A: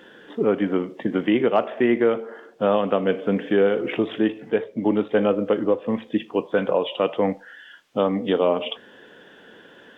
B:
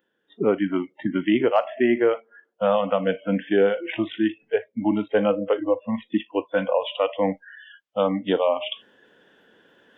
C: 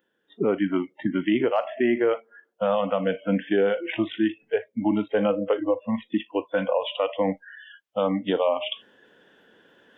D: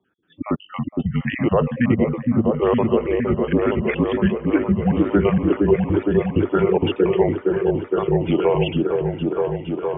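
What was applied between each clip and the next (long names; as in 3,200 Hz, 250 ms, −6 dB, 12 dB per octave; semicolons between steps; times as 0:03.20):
noise reduction from a noise print of the clip's start 27 dB; reversed playback; upward compression, threshold −41 dBFS; reversed playback
brickwall limiter −13 dBFS, peak gain reduction 5 dB
time-frequency cells dropped at random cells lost 44%; single-sideband voice off tune −130 Hz 250–3,200 Hz; echo whose low-pass opens from repeat to repeat 463 ms, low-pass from 400 Hz, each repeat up 1 octave, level 0 dB; level +5.5 dB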